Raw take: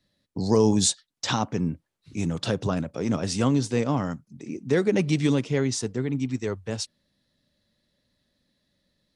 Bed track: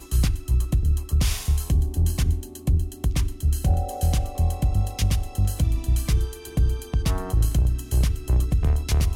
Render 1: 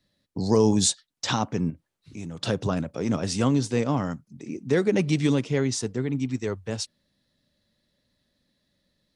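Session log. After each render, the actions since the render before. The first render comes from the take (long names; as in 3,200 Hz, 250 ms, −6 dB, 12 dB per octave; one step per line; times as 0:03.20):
0:01.70–0:02.43: downward compressor 2 to 1, threshold −39 dBFS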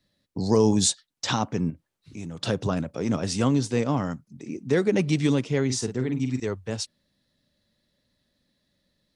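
0:05.65–0:06.40: double-tracking delay 47 ms −7.5 dB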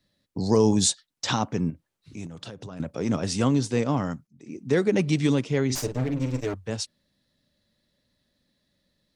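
0:02.26–0:02.80: downward compressor 12 to 1, threshold −35 dBFS
0:04.27–0:04.72: fade in, from −19.5 dB
0:05.75–0:06.54: lower of the sound and its delayed copy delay 6.8 ms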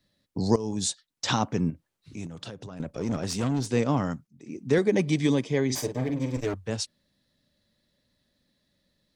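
0:00.56–0:01.31: fade in, from −17.5 dB
0:02.57–0:03.67: tube saturation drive 22 dB, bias 0.45
0:04.78–0:06.37: notch comb filter 1,400 Hz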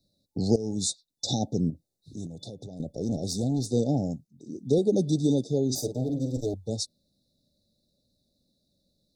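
brick-wall band-stop 870–3,500 Hz
parametric band 880 Hz −10 dB 0.39 octaves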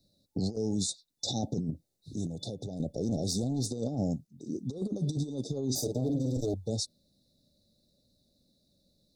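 compressor whose output falls as the input rises −28 dBFS, ratio −0.5
brickwall limiter −22 dBFS, peak gain reduction 7.5 dB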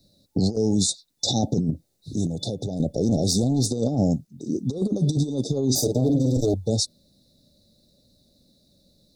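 level +9.5 dB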